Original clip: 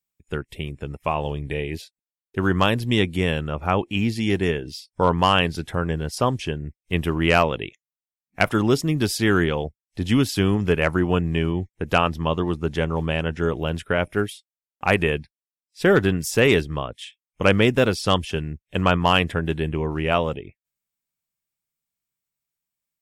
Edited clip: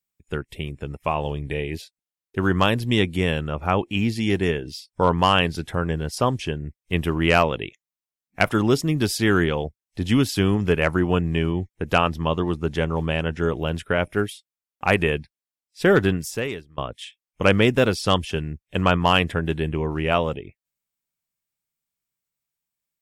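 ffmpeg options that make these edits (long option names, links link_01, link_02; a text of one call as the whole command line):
ffmpeg -i in.wav -filter_complex "[0:a]asplit=2[link_01][link_02];[link_01]atrim=end=16.78,asetpts=PTS-STARTPTS,afade=type=out:start_time=16.11:duration=0.67:curve=qua:silence=0.0707946[link_03];[link_02]atrim=start=16.78,asetpts=PTS-STARTPTS,afade=type=in:duration=0.004:curve=hsin:silence=0.0707946[link_04];[link_03][link_04]concat=n=2:v=0:a=1" out.wav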